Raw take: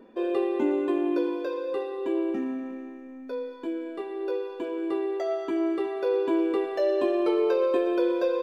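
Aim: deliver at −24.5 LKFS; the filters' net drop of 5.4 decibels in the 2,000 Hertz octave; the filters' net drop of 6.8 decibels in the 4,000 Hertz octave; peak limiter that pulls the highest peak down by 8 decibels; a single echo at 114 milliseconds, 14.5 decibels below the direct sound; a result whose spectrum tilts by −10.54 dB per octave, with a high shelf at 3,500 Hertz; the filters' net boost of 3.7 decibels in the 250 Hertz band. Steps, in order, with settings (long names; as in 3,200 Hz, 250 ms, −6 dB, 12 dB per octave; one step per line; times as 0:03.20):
parametric band 250 Hz +6 dB
parametric band 2,000 Hz −5 dB
high-shelf EQ 3,500 Hz −4.5 dB
parametric band 4,000 Hz −4 dB
brickwall limiter −18.5 dBFS
single-tap delay 114 ms −14.5 dB
level +3 dB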